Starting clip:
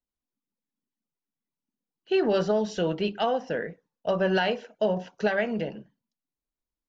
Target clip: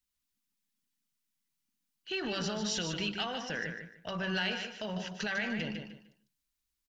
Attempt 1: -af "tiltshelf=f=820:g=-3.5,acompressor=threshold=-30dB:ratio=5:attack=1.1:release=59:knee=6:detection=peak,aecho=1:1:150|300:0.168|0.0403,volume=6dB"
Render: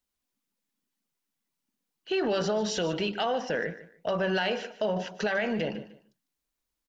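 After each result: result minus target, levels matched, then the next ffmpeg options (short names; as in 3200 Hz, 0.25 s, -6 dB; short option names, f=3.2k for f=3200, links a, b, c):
500 Hz band +6.0 dB; echo-to-direct -8.5 dB
-af "tiltshelf=f=820:g=-3.5,acompressor=threshold=-30dB:ratio=5:attack=1.1:release=59:knee=6:detection=peak,equalizer=f=530:t=o:w=2:g=-13.5,aecho=1:1:150|300:0.168|0.0403,volume=6dB"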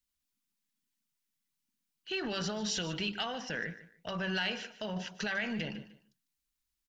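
echo-to-direct -8.5 dB
-af "tiltshelf=f=820:g=-3.5,acompressor=threshold=-30dB:ratio=5:attack=1.1:release=59:knee=6:detection=peak,equalizer=f=530:t=o:w=2:g=-13.5,aecho=1:1:150|300|450:0.447|0.107|0.0257,volume=6dB"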